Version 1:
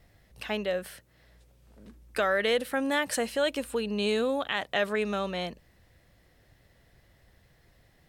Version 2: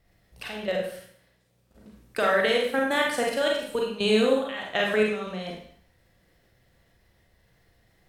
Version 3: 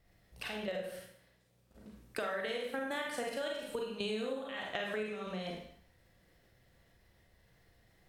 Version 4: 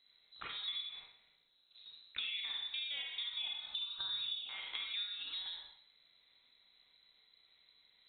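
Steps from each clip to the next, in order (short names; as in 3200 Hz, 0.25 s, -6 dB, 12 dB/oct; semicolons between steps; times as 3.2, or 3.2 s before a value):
level quantiser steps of 14 dB; Schroeder reverb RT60 0.58 s, combs from 33 ms, DRR -1.5 dB; gain +3.5 dB
compressor 5:1, threshold -32 dBFS, peak gain reduction 14 dB; gain -3.5 dB
treble ducked by the level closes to 1700 Hz, closed at -36 dBFS; inverted band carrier 4000 Hz; gain -3 dB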